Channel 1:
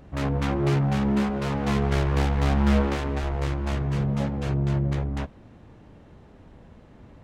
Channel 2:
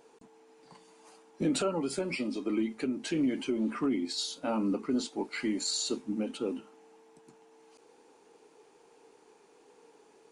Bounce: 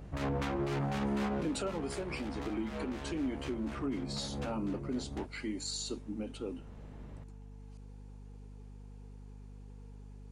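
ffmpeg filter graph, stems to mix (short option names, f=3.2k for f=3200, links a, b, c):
-filter_complex "[0:a]acrossover=split=240[a][b];[a]acompressor=threshold=-32dB:ratio=6[c];[c][b]amix=inputs=2:normalize=0,alimiter=limit=-22dB:level=0:latency=1:release=52,volume=-3.5dB[d];[1:a]volume=-6.5dB,asplit=2[e][f];[f]apad=whole_len=319056[g];[d][g]sidechaincompress=threshold=-43dB:ratio=12:attack=9.8:release=351[h];[h][e]amix=inputs=2:normalize=0,aeval=exprs='val(0)+0.00398*(sin(2*PI*50*n/s)+sin(2*PI*2*50*n/s)/2+sin(2*PI*3*50*n/s)/3+sin(2*PI*4*50*n/s)/4+sin(2*PI*5*50*n/s)/5)':c=same"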